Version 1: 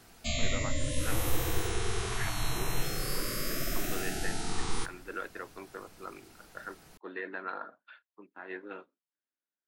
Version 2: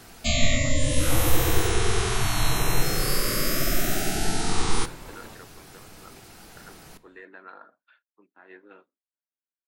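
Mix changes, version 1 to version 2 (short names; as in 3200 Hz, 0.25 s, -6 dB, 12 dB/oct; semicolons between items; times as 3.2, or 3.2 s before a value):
speech -7.0 dB; first sound +9.0 dB; second sound: unmuted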